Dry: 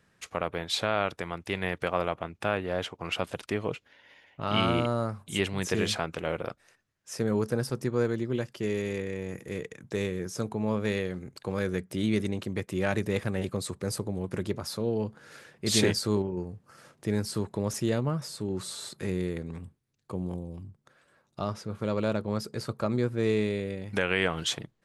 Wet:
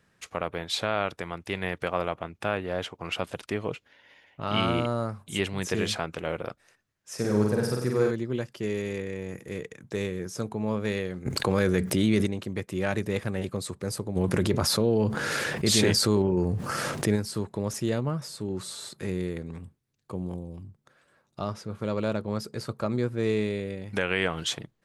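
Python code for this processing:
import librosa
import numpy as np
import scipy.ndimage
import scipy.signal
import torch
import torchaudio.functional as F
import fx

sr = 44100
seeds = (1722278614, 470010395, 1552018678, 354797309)

y = fx.room_flutter(x, sr, wall_m=8.2, rt60_s=0.9, at=(7.17, 8.1), fade=0.02)
y = fx.env_flatten(y, sr, amount_pct=70, at=(11.25, 12.25), fade=0.02)
y = fx.env_flatten(y, sr, amount_pct=70, at=(14.15, 17.15), fade=0.02)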